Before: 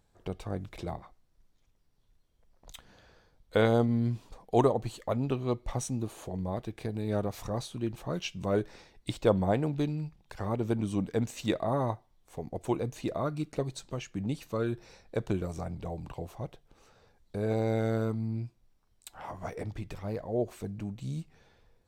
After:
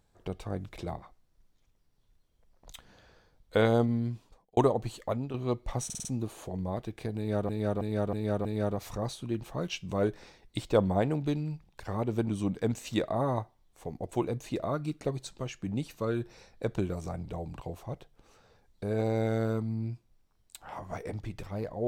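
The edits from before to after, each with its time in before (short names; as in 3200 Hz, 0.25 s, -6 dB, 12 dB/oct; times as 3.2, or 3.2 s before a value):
3.83–4.57 fade out
5.08–5.34 fade out, to -10 dB
5.85 stutter 0.05 s, 5 plays
6.97–7.29 loop, 5 plays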